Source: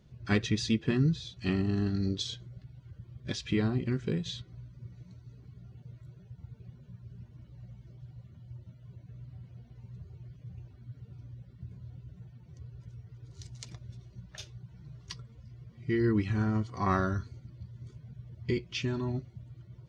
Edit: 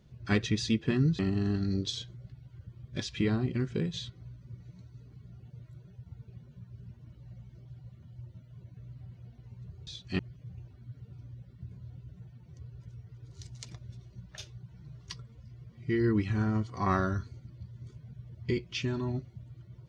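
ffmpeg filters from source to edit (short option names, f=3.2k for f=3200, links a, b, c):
-filter_complex "[0:a]asplit=4[a][b][c][d];[a]atrim=end=1.192[e];[b]atrim=start=1.508:end=10.192[f];[c]atrim=start=1.188:end=1.512[g];[d]atrim=start=10.188[h];[e][f]acrossfade=d=0.004:c1=hsin:c2=hsin[i];[i][g]acrossfade=d=0.004:c1=hsin:c2=hsin[j];[j][h]acrossfade=d=0.004:c1=hsin:c2=hsin"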